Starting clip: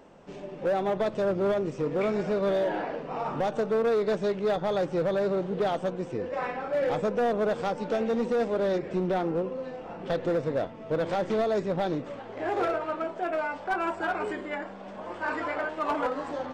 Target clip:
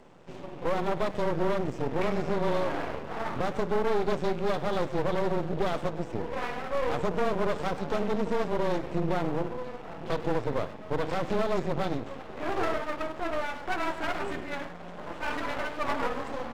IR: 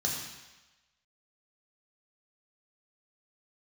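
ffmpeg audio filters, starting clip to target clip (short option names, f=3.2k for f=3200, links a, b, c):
-filter_complex "[0:a]asplit=2[a][b];[b]adelay=100,highpass=300,lowpass=3.4k,asoftclip=type=hard:threshold=-30dB,volume=-10dB[c];[a][c]amix=inputs=2:normalize=0,afreqshift=-22,asplit=2[d][e];[1:a]atrim=start_sample=2205[f];[e][f]afir=irnorm=-1:irlink=0,volume=-23.5dB[g];[d][g]amix=inputs=2:normalize=0,aeval=exprs='max(val(0),0)':c=same,volume=3dB"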